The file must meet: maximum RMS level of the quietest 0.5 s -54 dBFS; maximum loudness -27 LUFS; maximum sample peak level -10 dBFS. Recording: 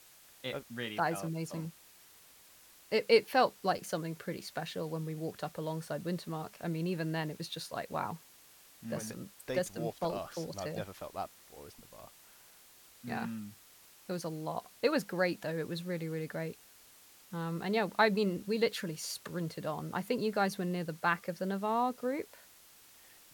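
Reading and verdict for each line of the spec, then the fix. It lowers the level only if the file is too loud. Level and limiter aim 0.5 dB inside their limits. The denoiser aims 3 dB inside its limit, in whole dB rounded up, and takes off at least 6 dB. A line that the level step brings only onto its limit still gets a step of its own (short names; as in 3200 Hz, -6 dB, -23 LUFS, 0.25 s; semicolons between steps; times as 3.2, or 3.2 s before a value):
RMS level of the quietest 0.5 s -59 dBFS: OK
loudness -35.5 LUFS: OK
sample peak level -12.5 dBFS: OK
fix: none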